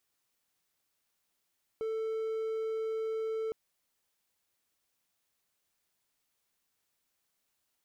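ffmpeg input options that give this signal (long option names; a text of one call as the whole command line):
ffmpeg -f lavfi -i "aevalsrc='0.0335*(1-4*abs(mod(443*t+0.25,1)-0.5))':duration=1.71:sample_rate=44100" out.wav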